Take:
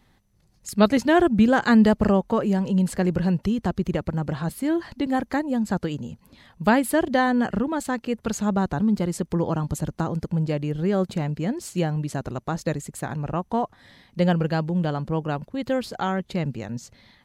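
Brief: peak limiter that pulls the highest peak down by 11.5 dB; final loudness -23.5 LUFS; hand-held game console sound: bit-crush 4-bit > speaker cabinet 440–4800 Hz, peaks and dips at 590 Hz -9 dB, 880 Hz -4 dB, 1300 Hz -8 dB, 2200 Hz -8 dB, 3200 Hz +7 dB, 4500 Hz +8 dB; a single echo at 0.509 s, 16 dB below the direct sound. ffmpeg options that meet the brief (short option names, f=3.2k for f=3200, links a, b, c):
-af "alimiter=limit=-14dB:level=0:latency=1,aecho=1:1:509:0.158,acrusher=bits=3:mix=0:aa=0.000001,highpass=440,equalizer=f=590:t=q:w=4:g=-9,equalizer=f=880:t=q:w=4:g=-4,equalizer=f=1.3k:t=q:w=4:g=-8,equalizer=f=2.2k:t=q:w=4:g=-8,equalizer=f=3.2k:t=q:w=4:g=7,equalizer=f=4.5k:t=q:w=4:g=8,lowpass=f=4.8k:w=0.5412,lowpass=f=4.8k:w=1.3066,volume=5.5dB"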